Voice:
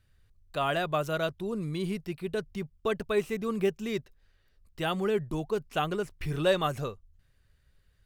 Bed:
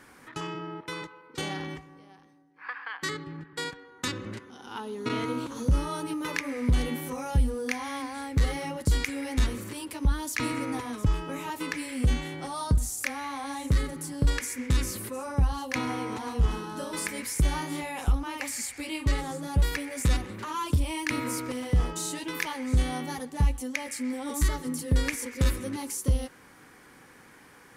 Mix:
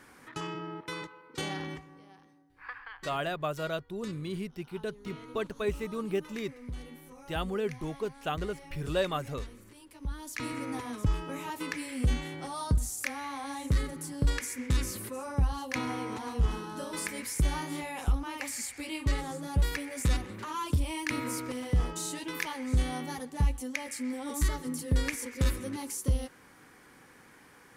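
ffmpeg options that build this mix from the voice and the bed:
-filter_complex "[0:a]adelay=2500,volume=-4dB[a];[1:a]volume=11.5dB,afade=t=out:st=2.4:d=0.79:silence=0.188365,afade=t=in:st=9.89:d=0.98:silence=0.211349[b];[a][b]amix=inputs=2:normalize=0"

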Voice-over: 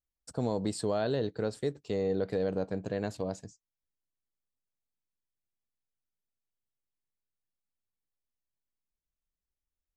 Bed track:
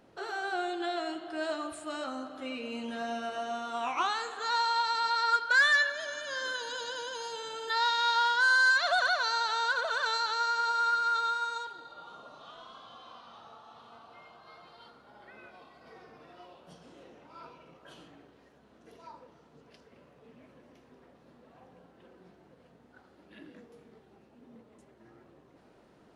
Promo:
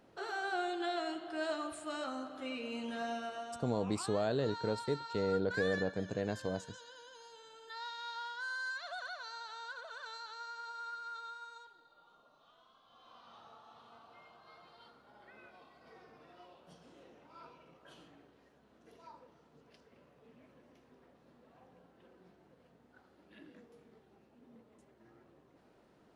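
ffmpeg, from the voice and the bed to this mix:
-filter_complex "[0:a]adelay=3250,volume=-3dB[a];[1:a]volume=8dB,afade=t=out:st=3.06:d=0.66:silence=0.211349,afade=t=in:st=12.85:d=0.49:silence=0.281838[b];[a][b]amix=inputs=2:normalize=0"

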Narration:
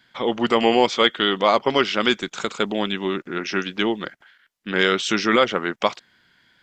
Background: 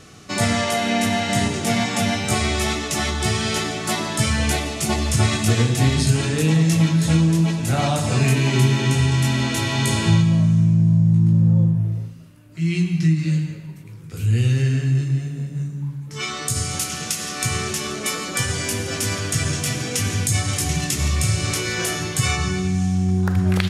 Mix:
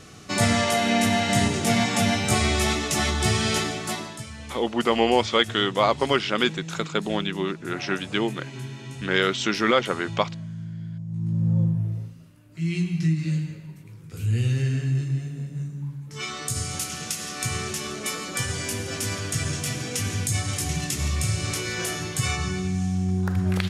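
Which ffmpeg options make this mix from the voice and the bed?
-filter_complex "[0:a]adelay=4350,volume=-3dB[a];[1:a]volume=13dB,afade=t=out:st=3.54:d=0.7:silence=0.125893,afade=t=in:st=11.07:d=0.52:silence=0.199526[b];[a][b]amix=inputs=2:normalize=0"

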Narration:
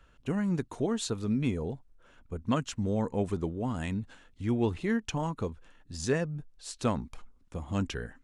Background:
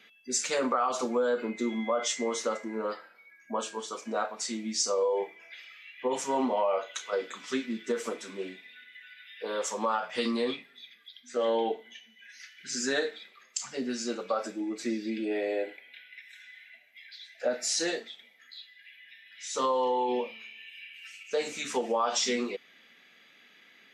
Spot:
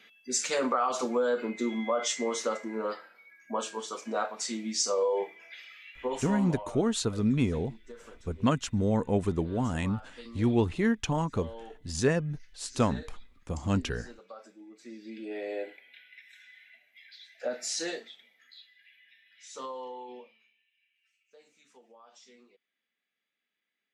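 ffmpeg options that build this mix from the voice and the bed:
-filter_complex "[0:a]adelay=5950,volume=3dB[a];[1:a]volume=13dB,afade=t=out:st=5.82:d=0.85:silence=0.141254,afade=t=in:st=14.82:d=0.79:silence=0.223872,afade=t=out:st=18.04:d=2.61:silence=0.0595662[b];[a][b]amix=inputs=2:normalize=0"

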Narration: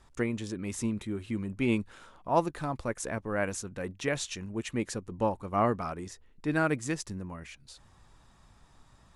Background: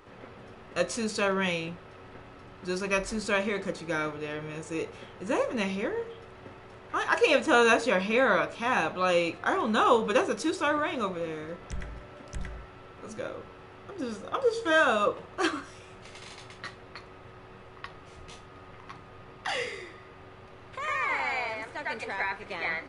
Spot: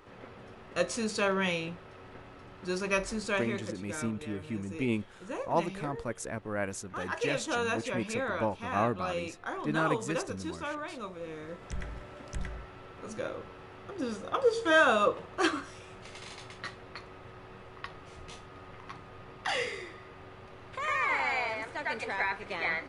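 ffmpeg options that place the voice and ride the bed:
-filter_complex "[0:a]adelay=3200,volume=-3dB[a];[1:a]volume=8.5dB,afade=t=out:st=3.02:d=0.85:silence=0.375837,afade=t=in:st=11.11:d=0.76:silence=0.316228[b];[a][b]amix=inputs=2:normalize=0"

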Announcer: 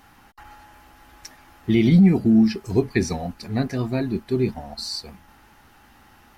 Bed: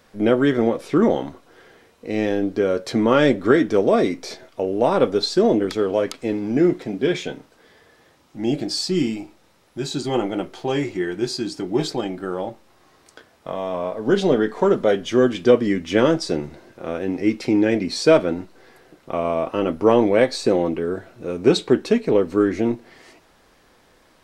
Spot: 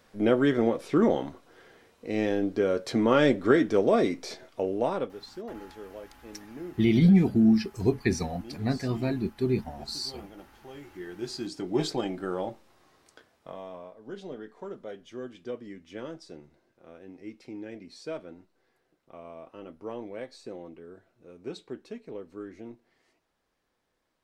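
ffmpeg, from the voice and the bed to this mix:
-filter_complex "[0:a]adelay=5100,volume=-4.5dB[a];[1:a]volume=12.5dB,afade=t=out:st=4.65:d=0.51:silence=0.133352,afade=t=in:st=10.85:d=1.01:silence=0.125893,afade=t=out:st=12.53:d=1.42:silence=0.133352[b];[a][b]amix=inputs=2:normalize=0"

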